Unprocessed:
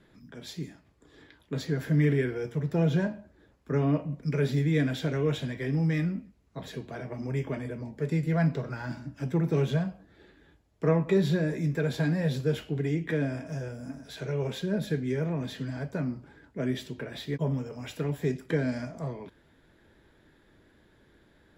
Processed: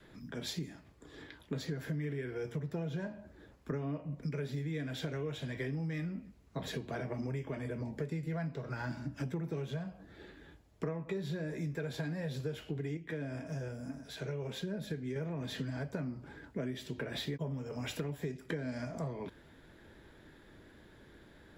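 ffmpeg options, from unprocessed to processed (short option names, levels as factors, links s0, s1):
-filter_complex "[0:a]asplit=3[s0][s1][s2];[s0]atrim=end=12.972[s3];[s1]atrim=start=12.968:end=15.162,asetpts=PTS-STARTPTS,volume=0.473[s4];[s2]atrim=start=15.158[s5];[s3][s4]acrossfade=d=0.004:c1=hsin:c2=hsin[s6];[s6][s5]acrossfade=d=0.004:c1=hsin:c2=hsin,adynamicequalizer=threshold=0.0126:dfrequency=220:dqfactor=1.3:tfrequency=220:tqfactor=1.3:attack=5:release=100:ratio=0.375:range=2:mode=cutabove:tftype=bell,acompressor=threshold=0.0126:ratio=10,volume=1.5"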